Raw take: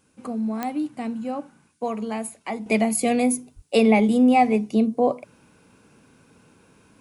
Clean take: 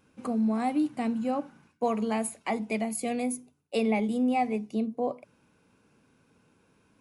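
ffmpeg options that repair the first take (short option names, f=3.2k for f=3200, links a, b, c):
-filter_complex "[0:a]adeclick=t=4,asplit=3[a][b][c];[a]afade=t=out:st=3.55:d=0.02[d];[b]highpass=f=140:w=0.5412,highpass=f=140:w=1.3066,afade=t=in:st=3.55:d=0.02,afade=t=out:st=3.67:d=0.02[e];[c]afade=t=in:st=3.67:d=0.02[f];[d][e][f]amix=inputs=3:normalize=0,agate=range=-21dB:threshold=-49dB,asetnsamples=n=441:p=0,asendcmd='2.66 volume volume -9.5dB',volume=0dB"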